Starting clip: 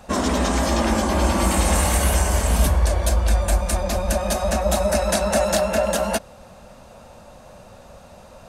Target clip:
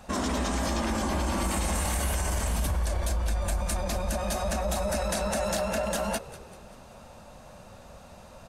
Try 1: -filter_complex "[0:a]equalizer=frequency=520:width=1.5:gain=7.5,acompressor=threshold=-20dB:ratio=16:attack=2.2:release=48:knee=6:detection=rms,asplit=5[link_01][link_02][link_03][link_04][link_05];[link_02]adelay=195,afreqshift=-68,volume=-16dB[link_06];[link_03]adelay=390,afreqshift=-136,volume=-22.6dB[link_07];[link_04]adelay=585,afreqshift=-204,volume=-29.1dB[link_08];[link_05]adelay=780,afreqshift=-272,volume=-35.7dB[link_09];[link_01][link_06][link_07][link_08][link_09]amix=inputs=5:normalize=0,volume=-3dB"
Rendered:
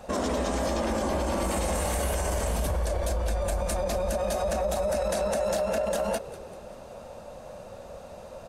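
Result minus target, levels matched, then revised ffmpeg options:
500 Hz band +4.0 dB
-filter_complex "[0:a]equalizer=frequency=520:width=1.5:gain=-3,acompressor=threshold=-20dB:ratio=16:attack=2.2:release=48:knee=6:detection=rms,asplit=5[link_01][link_02][link_03][link_04][link_05];[link_02]adelay=195,afreqshift=-68,volume=-16dB[link_06];[link_03]adelay=390,afreqshift=-136,volume=-22.6dB[link_07];[link_04]adelay=585,afreqshift=-204,volume=-29.1dB[link_08];[link_05]adelay=780,afreqshift=-272,volume=-35.7dB[link_09];[link_01][link_06][link_07][link_08][link_09]amix=inputs=5:normalize=0,volume=-3dB"

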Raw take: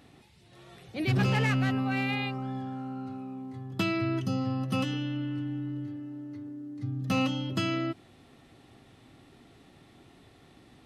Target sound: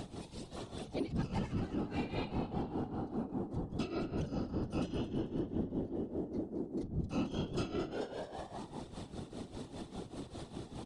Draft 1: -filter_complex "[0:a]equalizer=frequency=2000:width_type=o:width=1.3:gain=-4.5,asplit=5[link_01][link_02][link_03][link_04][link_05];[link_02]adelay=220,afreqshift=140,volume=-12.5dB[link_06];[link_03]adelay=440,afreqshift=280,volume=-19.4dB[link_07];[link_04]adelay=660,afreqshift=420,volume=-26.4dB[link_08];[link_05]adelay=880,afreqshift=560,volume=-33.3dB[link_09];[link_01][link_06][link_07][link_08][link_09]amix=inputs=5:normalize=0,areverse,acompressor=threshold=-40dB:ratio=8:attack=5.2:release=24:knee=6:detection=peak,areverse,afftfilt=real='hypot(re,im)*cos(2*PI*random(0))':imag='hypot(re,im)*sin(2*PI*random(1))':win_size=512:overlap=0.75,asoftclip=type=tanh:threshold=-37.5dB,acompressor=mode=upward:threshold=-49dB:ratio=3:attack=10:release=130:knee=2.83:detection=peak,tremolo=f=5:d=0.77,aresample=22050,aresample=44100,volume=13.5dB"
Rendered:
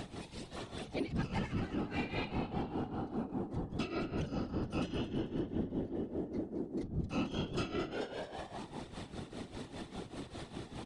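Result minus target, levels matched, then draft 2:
2,000 Hz band +5.5 dB
-filter_complex "[0:a]equalizer=frequency=2000:width_type=o:width=1.3:gain=-13,asplit=5[link_01][link_02][link_03][link_04][link_05];[link_02]adelay=220,afreqshift=140,volume=-12.5dB[link_06];[link_03]adelay=440,afreqshift=280,volume=-19.4dB[link_07];[link_04]adelay=660,afreqshift=420,volume=-26.4dB[link_08];[link_05]adelay=880,afreqshift=560,volume=-33.3dB[link_09];[link_01][link_06][link_07][link_08][link_09]amix=inputs=5:normalize=0,areverse,acompressor=threshold=-40dB:ratio=8:attack=5.2:release=24:knee=6:detection=peak,areverse,afftfilt=real='hypot(re,im)*cos(2*PI*random(0))':imag='hypot(re,im)*sin(2*PI*random(1))':win_size=512:overlap=0.75,asoftclip=type=tanh:threshold=-37.5dB,acompressor=mode=upward:threshold=-49dB:ratio=3:attack=10:release=130:knee=2.83:detection=peak,tremolo=f=5:d=0.77,aresample=22050,aresample=44100,volume=13.5dB"

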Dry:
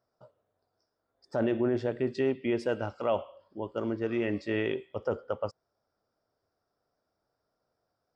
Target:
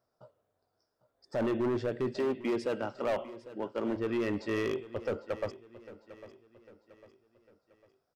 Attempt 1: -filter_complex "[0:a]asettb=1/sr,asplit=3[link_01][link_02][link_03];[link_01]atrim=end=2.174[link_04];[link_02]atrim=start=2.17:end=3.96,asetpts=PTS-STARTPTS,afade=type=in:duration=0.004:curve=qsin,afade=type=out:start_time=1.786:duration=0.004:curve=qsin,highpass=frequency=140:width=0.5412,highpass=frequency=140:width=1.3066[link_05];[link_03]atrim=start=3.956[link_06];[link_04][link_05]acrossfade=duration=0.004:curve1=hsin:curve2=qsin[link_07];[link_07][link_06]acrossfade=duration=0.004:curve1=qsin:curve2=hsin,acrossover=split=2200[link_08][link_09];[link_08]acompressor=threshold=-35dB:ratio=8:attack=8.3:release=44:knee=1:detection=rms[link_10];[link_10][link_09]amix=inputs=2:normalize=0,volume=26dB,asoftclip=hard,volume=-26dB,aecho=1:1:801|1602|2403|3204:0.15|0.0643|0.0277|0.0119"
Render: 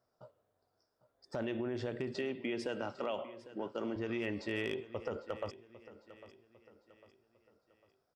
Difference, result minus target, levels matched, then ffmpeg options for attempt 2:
downward compressor: peak gain reduction +11.5 dB
-filter_complex "[0:a]asettb=1/sr,asplit=3[link_01][link_02][link_03];[link_01]atrim=end=2.174[link_04];[link_02]atrim=start=2.17:end=3.96,asetpts=PTS-STARTPTS,afade=type=in:duration=0.004:curve=qsin,afade=type=out:start_time=1.786:duration=0.004:curve=qsin,highpass=frequency=140:width=0.5412,highpass=frequency=140:width=1.3066[link_05];[link_03]atrim=start=3.956[link_06];[link_04][link_05]acrossfade=duration=0.004:curve1=hsin:curve2=qsin[link_07];[link_07][link_06]acrossfade=duration=0.004:curve1=qsin:curve2=hsin,volume=26dB,asoftclip=hard,volume=-26dB,aecho=1:1:801|1602|2403|3204:0.15|0.0643|0.0277|0.0119"

